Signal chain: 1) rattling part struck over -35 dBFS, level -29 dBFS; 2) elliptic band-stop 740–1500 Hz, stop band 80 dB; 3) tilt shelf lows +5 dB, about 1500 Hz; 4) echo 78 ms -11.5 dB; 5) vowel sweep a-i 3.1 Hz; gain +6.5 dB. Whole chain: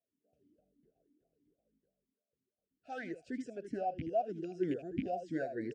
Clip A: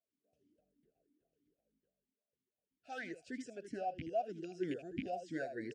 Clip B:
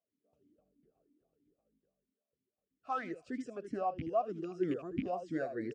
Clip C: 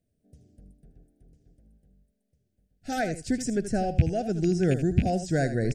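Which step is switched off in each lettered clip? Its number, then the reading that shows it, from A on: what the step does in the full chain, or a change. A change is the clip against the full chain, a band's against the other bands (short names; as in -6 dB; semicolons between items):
3, 4 kHz band +7.0 dB; 2, 1 kHz band +1.5 dB; 5, 125 Hz band +10.5 dB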